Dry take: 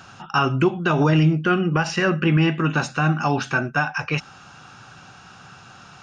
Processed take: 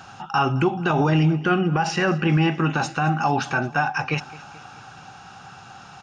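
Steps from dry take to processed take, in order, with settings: peaking EQ 800 Hz +10.5 dB 0.23 oct; peak limiter -11 dBFS, peak gain reduction 5.5 dB; on a send: feedback delay 217 ms, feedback 56%, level -20 dB

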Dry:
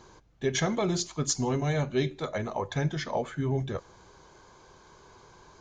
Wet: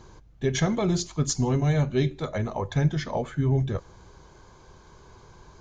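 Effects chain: bass shelf 170 Hz +11.5 dB

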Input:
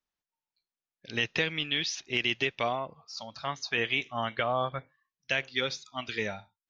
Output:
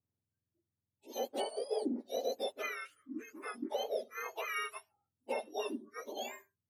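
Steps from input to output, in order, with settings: spectrum inverted on a logarithmic axis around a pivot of 1.2 kHz; 3.70–4.36 s: peaking EQ 6 kHz -3.5 dB 1.9 oct; trim -7 dB

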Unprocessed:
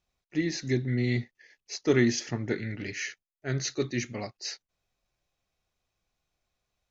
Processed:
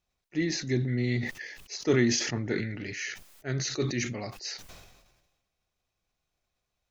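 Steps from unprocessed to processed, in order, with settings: decay stretcher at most 47 dB/s; trim -1.5 dB

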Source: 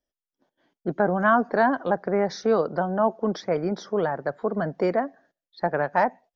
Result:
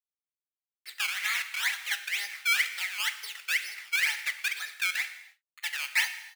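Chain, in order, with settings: low-pass 4.9 kHz 24 dB/octave; comb 2.3 ms, depth 92%; level rider gain up to 11 dB; bit crusher 6-bit; 1.23–1.63 s: Schmitt trigger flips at -15 dBFS; decimation with a swept rate 16×, swing 100% 2.1 Hz; ladder high-pass 1.9 kHz, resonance 70%; on a send: reverberation, pre-delay 3 ms, DRR 8.5 dB; on the sum: trim -2.5 dB

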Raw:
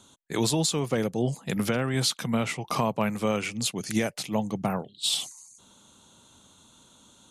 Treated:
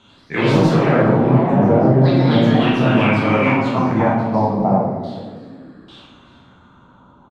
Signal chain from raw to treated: frequency-shifting echo 407 ms, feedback 38%, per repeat +35 Hz, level -15 dB; LFO low-pass saw down 0.34 Hz 320–2700 Hz; ever faster or slower copies 89 ms, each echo +3 st, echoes 3; reverberation RT60 1.0 s, pre-delay 12 ms, DRR -5.5 dB; trim +2 dB

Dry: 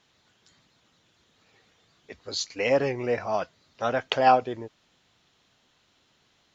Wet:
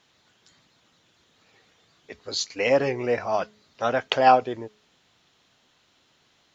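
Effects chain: bass shelf 110 Hz -5 dB; de-hum 211.6 Hz, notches 2; trim +2.5 dB

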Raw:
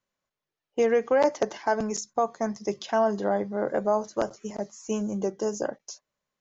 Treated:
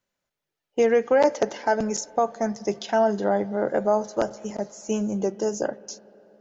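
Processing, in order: band-stop 1.1 kHz, Q 8.6; on a send: reverberation RT60 3.9 s, pre-delay 47 ms, DRR 20 dB; on the sum: trim +3 dB

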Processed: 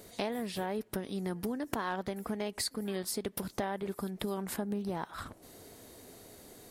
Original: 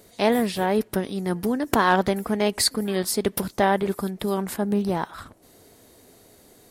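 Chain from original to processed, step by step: compression 6:1, threshold -33 dBFS, peak gain reduction 17.5 dB

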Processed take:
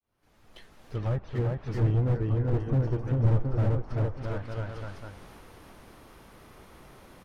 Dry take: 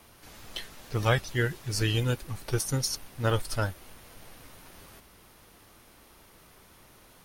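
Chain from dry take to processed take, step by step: fade-in on the opening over 2.32 s; treble shelf 2.6 kHz -11 dB; on a send: bouncing-ball echo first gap 390 ms, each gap 0.85×, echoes 5; on the sum: low-pass that closes with the level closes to 1 kHz, closed at -28 dBFS; slew-rate limiter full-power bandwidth 10 Hz; trim +4.5 dB

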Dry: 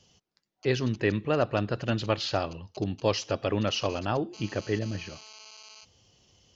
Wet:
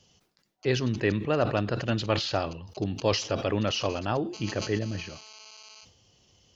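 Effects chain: decay stretcher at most 100 dB/s

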